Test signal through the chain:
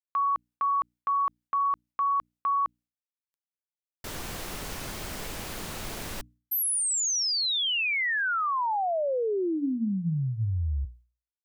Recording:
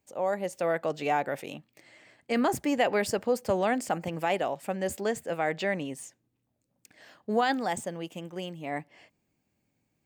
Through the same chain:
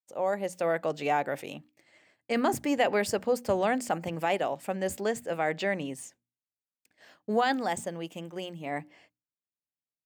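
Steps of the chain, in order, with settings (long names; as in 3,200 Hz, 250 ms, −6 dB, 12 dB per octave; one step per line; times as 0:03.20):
downward expander −50 dBFS
mains-hum notches 60/120/180/240/300 Hz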